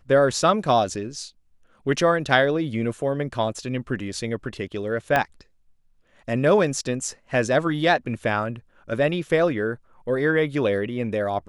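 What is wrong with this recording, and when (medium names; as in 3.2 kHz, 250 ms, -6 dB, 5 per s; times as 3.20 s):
5.16 s: pop -8 dBFS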